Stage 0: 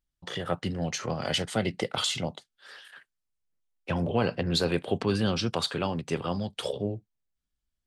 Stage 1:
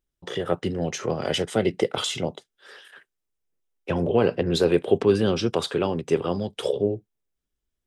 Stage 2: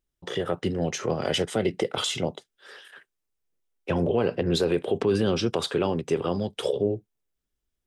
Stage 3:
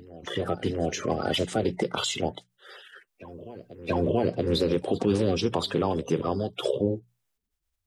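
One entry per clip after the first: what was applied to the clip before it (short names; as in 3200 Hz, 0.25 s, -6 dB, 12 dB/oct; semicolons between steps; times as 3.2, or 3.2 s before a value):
bell 400 Hz +10 dB 0.85 oct; notch 4400 Hz, Q 9; gain +1 dB
limiter -13.5 dBFS, peak gain reduction 8 dB
bin magnitudes rounded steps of 30 dB; notches 60/120/180 Hz; reverse echo 0.68 s -18 dB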